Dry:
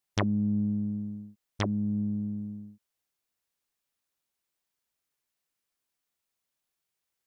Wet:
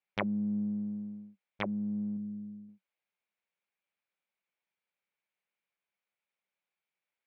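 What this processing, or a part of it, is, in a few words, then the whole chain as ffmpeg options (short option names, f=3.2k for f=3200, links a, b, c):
kitchen radio: -filter_complex "[0:a]highpass=190,equalizer=f=190:t=q:w=4:g=8,equalizer=f=270:t=q:w=4:g=-8,equalizer=f=550:t=q:w=4:g=5,equalizer=f=850:t=q:w=4:g=4,equalizer=f=1.5k:t=q:w=4:g=3,equalizer=f=2.3k:t=q:w=4:g=10,lowpass=f=3.7k:w=0.5412,lowpass=f=3.7k:w=1.3066,asettb=1/sr,asplit=3[a][b][c];[a]atrim=end=2.174[d];[b]atrim=start=2.17:end=2.69,asetpts=PTS-STARTPTS,afade=t=in:d=0.004:c=qsin,afade=t=out:st=0.516:d=0.004:c=qsin,equalizer=f=1.1k:t=o:w=1.8:g=-14.5[e];[c]atrim=start=2.686[f];[d][e]acrossfade=d=0.004:c1=hsin:c2=qsin[g];[g][f]acrossfade=d=0.004:c1=qsin:c2=hsin,volume=-5.5dB"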